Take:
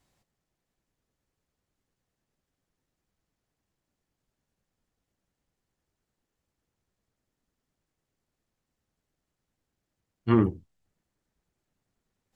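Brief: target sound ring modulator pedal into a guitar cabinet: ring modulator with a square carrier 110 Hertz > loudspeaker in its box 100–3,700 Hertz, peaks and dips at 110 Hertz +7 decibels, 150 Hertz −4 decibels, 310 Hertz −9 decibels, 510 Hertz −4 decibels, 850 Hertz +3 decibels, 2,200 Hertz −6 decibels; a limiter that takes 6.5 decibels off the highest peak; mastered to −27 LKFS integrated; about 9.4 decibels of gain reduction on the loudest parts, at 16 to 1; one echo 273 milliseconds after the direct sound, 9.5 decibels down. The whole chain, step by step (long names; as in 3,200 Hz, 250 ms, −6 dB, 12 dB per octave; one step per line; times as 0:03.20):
downward compressor 16 to 1, threshold −24 dBFS
brickwall limiter −23 dBFS
single-tap delay 273 ms −9.5 dB
ring modulator with a square carrier 110 Hz
loudspeaker in its box 100–3,700 Hz, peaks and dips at 110 Hz +7 dB, 150 Hz −4 dB, 310 Hz −9 dB, 510 Hz −4 dB, 850 Hz +3 dB, 2,200 Hz −6 dB
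level +13 dB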